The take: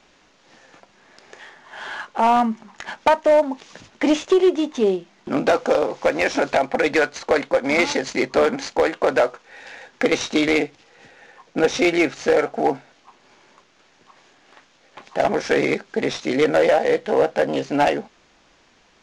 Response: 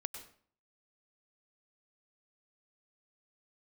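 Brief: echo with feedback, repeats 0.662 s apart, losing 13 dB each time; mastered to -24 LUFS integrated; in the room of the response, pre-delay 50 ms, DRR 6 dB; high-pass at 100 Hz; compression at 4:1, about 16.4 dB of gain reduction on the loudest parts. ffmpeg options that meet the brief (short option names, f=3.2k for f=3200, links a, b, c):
-filter_complex "[0:a]highpass=100,acompressor=threshold=-33dB:ratio=4,aecho=1:1:662|1324|1986:0.224|0.0493|0.0108,asplit=2[a][b];[1:a]atrim=start_sample=2205,adelay=50[c];[b][c]afir=irnorm=-1:irlink=0,volume=-4.5dB[d];[a][d]amix=inputs=2:normalize=0,volume=10dB"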